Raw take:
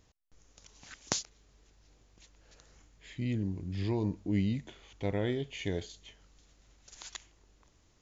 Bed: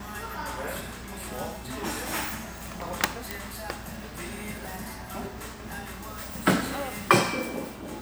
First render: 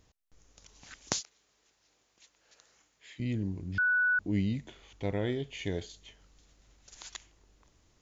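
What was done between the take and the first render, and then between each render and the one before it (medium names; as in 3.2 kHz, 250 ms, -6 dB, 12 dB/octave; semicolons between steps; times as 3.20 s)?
1.20–3.20 s: high-pass 790 Hz 6 dB/octave; 3.78–4.19 s: bleep 1.48 kHz -23.5 dBFS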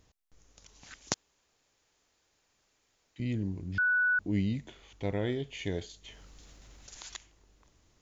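1.14–3.16 s: room tone; 6.04–7.15 s: level flattener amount 50%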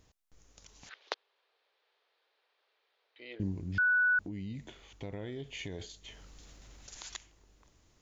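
0.89–3.40 s: elliptic band-pass 430–4000 Hz; 4.20–5.80 s: compression 12:1, threshold -36 dBFS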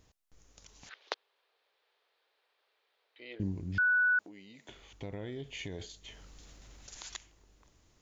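4.09–4.69 s: high-pass 480 Hz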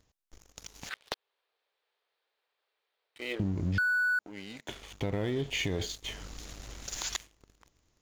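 compression 16:1, threshold -37 dBFS, peak gain reduction 12 dB; waveshaping leveller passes 3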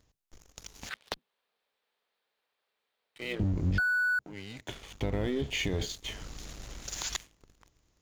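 octave divider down 1 oct, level -3 dB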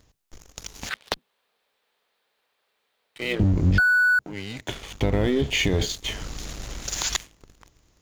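trim +9 dB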